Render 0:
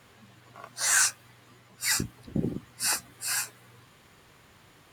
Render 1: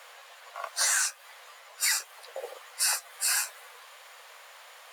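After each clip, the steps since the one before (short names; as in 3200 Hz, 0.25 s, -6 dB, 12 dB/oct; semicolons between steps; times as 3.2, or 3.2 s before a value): steep high-pass 500 Hz 72 dB/oct; compressor 8:1, threshold -32 dBFS, peak gain reduction 13.5 dB; gain +8.5 dB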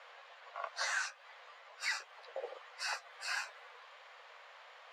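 air absorption 190 m; gain -3.5 dB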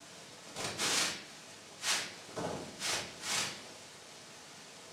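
noise vocoder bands 2; reverb RT60 0.70 s, pre-delay 5 ms, DRR -3 dB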